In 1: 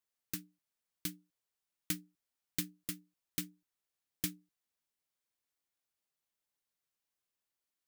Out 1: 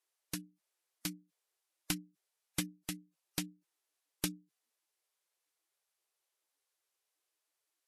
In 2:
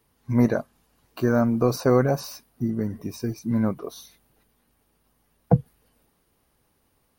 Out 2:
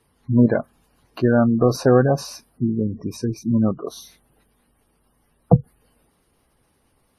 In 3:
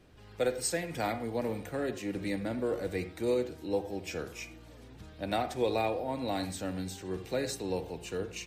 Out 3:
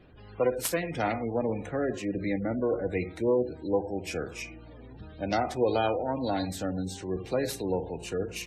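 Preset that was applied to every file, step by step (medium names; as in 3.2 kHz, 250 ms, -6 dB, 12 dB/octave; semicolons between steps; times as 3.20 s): self-modulated delay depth 0.15 ms; spectral gate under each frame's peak -25 dB strong; trim +4.5 dB; Vorbis 48 kbps 32 kHz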